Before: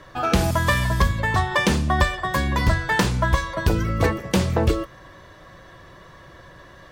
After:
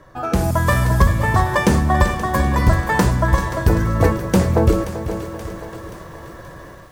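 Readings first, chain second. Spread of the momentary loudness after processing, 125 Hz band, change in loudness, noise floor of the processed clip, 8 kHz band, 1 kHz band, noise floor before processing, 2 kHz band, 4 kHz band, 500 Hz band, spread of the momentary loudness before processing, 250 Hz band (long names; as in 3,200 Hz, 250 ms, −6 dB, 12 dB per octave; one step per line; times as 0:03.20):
18 LU, +5.5 dB, +3.5 dB, −38 dBFS, +2.0 dB, +3.5 dB, −46 dBFS, +0.5 dB, −3.5 dB, +5.0 dB, 3 LU, +5.0 dB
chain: parametric band 3,300 Hz −10.5 dB 1.7 octaves
feedback echo with a high-pass in the loop 528 ms, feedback 48%, high-pass 420 Hz, level −12 dB
automatic gain control gain up to 9 dB
feedback echo at a low word length 388 ms, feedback 55%, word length 7 bits, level −11.5 dB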